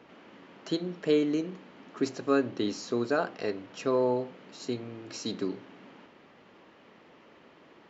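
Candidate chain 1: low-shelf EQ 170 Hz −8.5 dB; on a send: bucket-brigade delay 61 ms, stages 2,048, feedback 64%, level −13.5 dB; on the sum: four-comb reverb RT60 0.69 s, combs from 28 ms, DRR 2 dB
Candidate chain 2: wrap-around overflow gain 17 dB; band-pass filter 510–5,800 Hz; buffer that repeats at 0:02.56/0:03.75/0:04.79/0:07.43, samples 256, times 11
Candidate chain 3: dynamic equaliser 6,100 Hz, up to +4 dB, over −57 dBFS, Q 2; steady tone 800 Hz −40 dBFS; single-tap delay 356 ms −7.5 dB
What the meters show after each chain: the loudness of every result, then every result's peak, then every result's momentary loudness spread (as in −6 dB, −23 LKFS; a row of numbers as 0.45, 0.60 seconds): −30.5, −34.0, −30.5 LKFS; −13.0, −12.0, −11.5 dBFS; 15, 17, 15 LU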